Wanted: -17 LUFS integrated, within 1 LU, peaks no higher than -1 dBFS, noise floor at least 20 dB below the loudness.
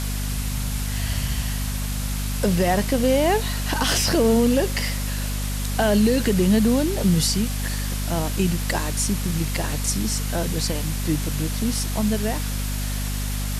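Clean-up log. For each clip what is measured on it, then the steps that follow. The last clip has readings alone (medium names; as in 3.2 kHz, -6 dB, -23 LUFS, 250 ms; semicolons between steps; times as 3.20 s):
hum 50 Hz; highest harmonic 250 Hz; hum level -24 dBFS; noise floor -26 dBFS; noise floor target -43 dBFS; loudness -23.0 LUFS; peak level -8.5 dBFS; loudness target -17.0 LUFS
-> hum notches 50/100/150/200/250 Hz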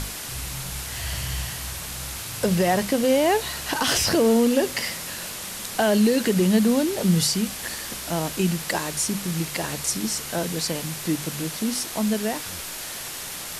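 hum not found; noise floor -34 dBFS; noise floor target -44 dBFS
-> noise reduction 10 dB, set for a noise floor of -34 dBFS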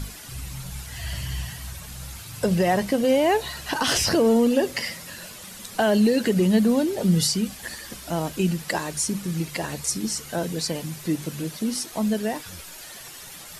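noise floor -41 dBFS; noise floor target -44 dBFS
-> noise reduction 6 dB, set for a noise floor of -41 dBFS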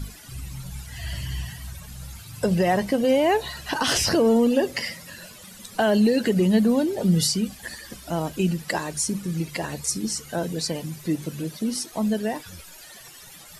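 noise floor -45 dBFS; loudness -23.5 LUFS; peak level -9.5 dBFS; loudness target -17.0 LUFS
-> trim +6.5 dB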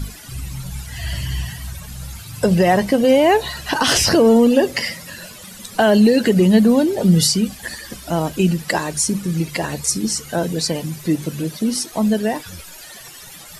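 loudness -17.0 LUFS; peak level -3.0 dBFS; noise floor -39 dBFS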